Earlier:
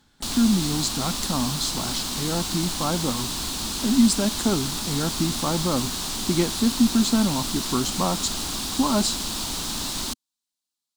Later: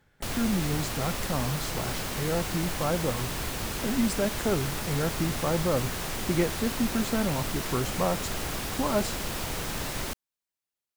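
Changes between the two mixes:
speech -3.5 dB; master: add graphic EQ 125/250/500/1000/2000/4000/8000 Hz +6/-9/+9/-5/+8/-11/-7 dB

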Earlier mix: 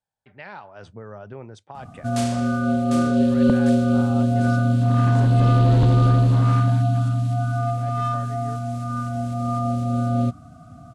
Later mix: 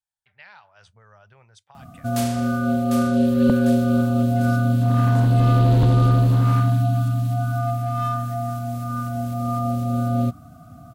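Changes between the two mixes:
speech: add amplifier tone stack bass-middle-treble 10-0-10; master: remove low-pass 9.5 kHz 24 dB/octave

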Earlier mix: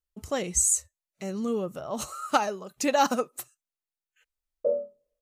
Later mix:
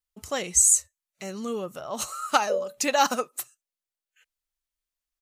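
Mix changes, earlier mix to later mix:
background: entry -2.15 s; master: add tilt shelf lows -5 dB, about 670 Hz

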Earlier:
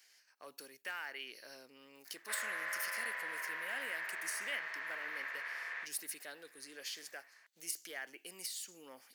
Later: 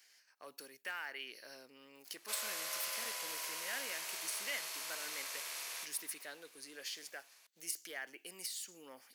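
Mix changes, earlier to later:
background: remove resonant low-pass 1.8 kHz, resonance Q 7.5; reverb: on, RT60 2.7 s

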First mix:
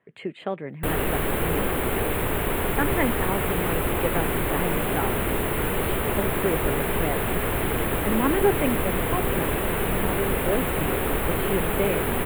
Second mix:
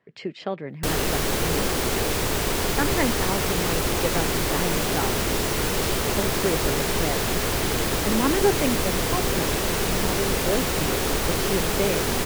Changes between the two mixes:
speech: add tone controls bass +1 dB, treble -11 dB; master: remove Butterworth band-stop 5.5 kHz, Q 0.75

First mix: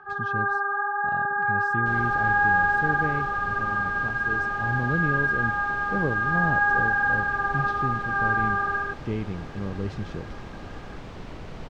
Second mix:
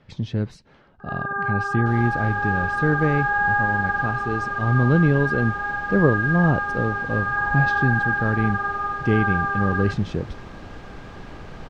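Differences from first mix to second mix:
speech +9.5 dB; first sound: entry +1.00 s

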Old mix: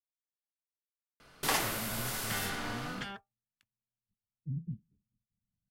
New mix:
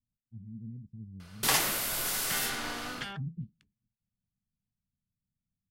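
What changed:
speech: entry -1.30 s; second sound: add distance through air 54 m; master: add treble shelf 2.2 kHz +7 dB

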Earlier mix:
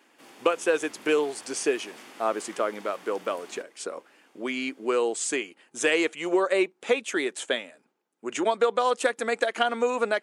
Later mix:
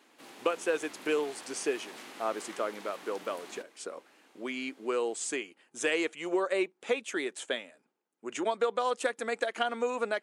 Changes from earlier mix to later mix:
speech -6.0 dB; background: remove band-stop 4 kHz, Q 11

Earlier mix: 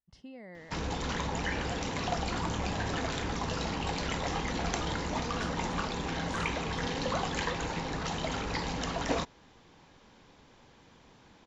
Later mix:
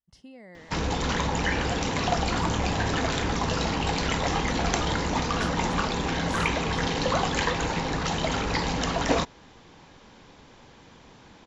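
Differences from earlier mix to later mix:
speech: remove distance through air 88 m; background +7.0 dB

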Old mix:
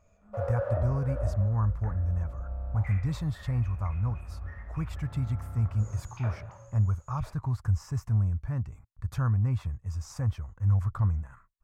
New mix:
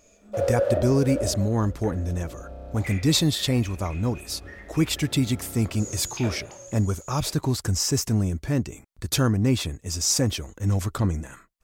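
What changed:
background -6.5 dB; master: remove FFT filter 110 Hz 0 dB, 340 Hz -24 dB, 1.1 kHz -4 dB, 3.5 kHz -26 dB

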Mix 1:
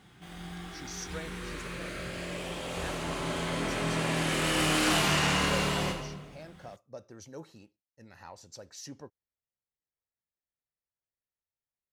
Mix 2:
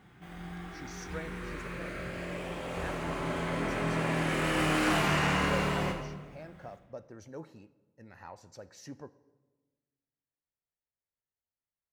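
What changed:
speech: send on; master: add high-order bell 6.2 kHz -8.5 dB 2.4 oct

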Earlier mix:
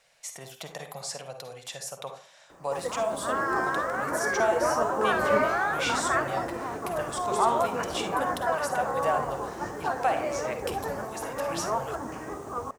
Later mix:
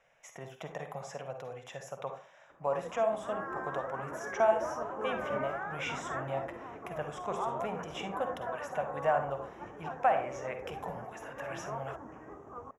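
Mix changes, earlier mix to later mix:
background -11.0 dB; master: add boxcar filter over 10 samples

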